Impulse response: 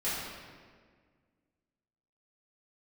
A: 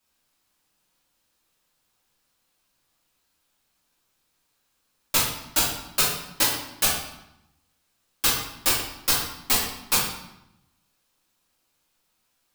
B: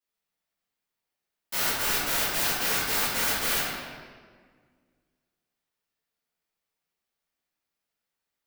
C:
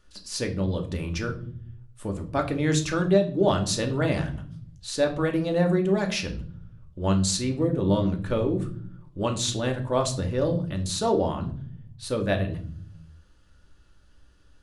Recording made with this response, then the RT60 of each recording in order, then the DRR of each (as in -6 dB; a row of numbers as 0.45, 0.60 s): B; 0.85, 1.7, 0.50 s; -7.5, -12.5, 3.5 dB